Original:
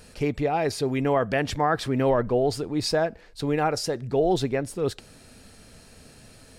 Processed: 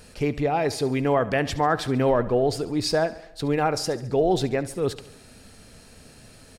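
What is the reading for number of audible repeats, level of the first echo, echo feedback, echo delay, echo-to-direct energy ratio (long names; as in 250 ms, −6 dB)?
4, −17.0 dB, 58%, 70 ms, −15.0 dB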